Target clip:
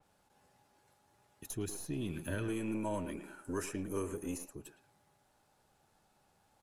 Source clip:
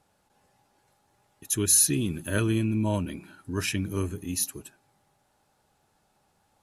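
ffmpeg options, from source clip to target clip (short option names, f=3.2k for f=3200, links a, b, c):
-filter_complex "[0:a]aeval=exprs='if(lt(val(0),0),0.708*val(0),val(0))':c=same,asettb=1/sr,asplit=3[a][b][c];[a]atrim=end=2.484[d];[b]atrim=start=2.48:end=4.53,asetpts=PTS-STARTPTS,afade=t=in:d=0.004:c=qsin,afade=t=out:st=2.046:d=0.004:c=qsin,equalizer=f=125:t=o:w=1:g=-10,equalizer=f=500:t=o:w=1:g=7,equalizer=f=1k:t=o:w=1:g=3,equalizer=f=4k:t=o:w=1:g=-9,equalizer=f=8k:t=o:w=1:g=11[e];[c]atrim=start=4.526[f];[d][e]acrossfade=d=0.004:c1=hsin:c2=qsin[g];[g][f]acrossfade=d=0.004:c1=qsin:c2=hsin,alimiter=limit=-18.5dB:level=0:latency=1:release=366,acrossover=split=500|1000[h][i][j];[h]acompressor=threshold=-35dB:ratio=4[k];[i]acompressor=threshold=-45dB:ratio=4[l];[j]acompressor=threshold=-42dB:ratio=4[m];[k][l][m]amix=inputs=3:normalize=0,asplit=2[n][o];[o]adelay=110,highpass=300,lowpass=3.4k,asoftclip=type=hard:threshold=-32.5dB,volume=-10dB[p];[n][p]amix=inputs=2:normalize=0,adynamicequalizer=threshold=0.00141:dfrequency=4000:dqfactor=0.7:tfrequency=4000:tqfactor=0.7:attack=5:release=100:ratio=0.375:range=2.5:mode=cutabove:tftype=highshelf,volume=-1.5dB"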